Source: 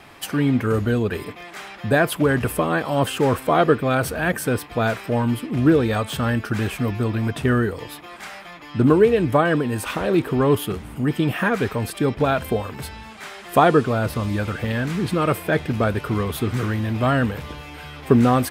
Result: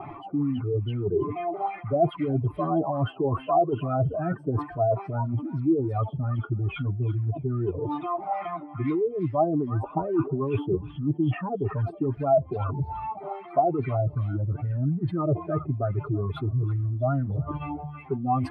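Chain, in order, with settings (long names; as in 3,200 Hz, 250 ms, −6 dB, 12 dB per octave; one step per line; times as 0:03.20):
expanding power law on the bin magnitudes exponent 2.4
reversed playback
downward compressor 10 to 1, threshold −30 dBFS, peak gain reduction 20 dB
reversed playback
phaser with its sweep stopped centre 330 Hz, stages 8
surface crackle 360 per second −63 dBFS
on a send: echo through a band-pass that steps 326 ms, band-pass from 1,700 Hz, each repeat 0.7 octaves, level −3 dB
on the sum: auto-filter low-pass sine 2.4 Hz 540–2,000 Hz
level +8.5 dB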